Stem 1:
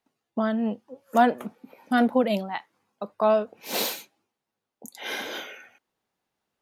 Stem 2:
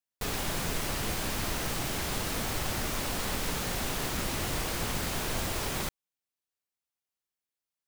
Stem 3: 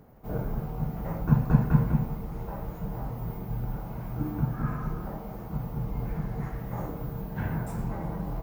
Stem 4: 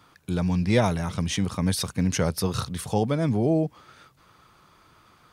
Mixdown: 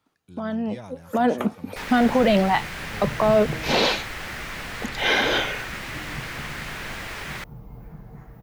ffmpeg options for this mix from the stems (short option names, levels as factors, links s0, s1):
-filter_complex "[0:a]acrossover=split=590|5100[s0][s1][s2];[s0]acompressor=threshold=0.0631:ratio=4[s3];[s1]acompressor=threshold=0.0501:ratio=4[s4];[s2]acompressor=threshold=0.00282:ratio=4[s5];[s3][s4][s5]amix=inputs=3:normalize=0,alimiter=limit=0.0668:level=0:latency=1:release=18,dynaudnorm=f=160:g=13:m=4.22,volume=1.12[s6];[1:a]equalizer=f=1900:w=1:g=12.5,adelay=1550,volume=0.531[s7];[2:a]adelay=1750,volume=0.335[s8];[3:a]volume=0.119[s9];[s6][s7][s8][s9]amix=inputs=4:normalize=0,acrossover=split=6200[s10][s11];[s11]acompressor=threshold=0.00501:ratio=4:attack=1:release=60[s12];[s10][s12]amix=inputs=2:normalize=0"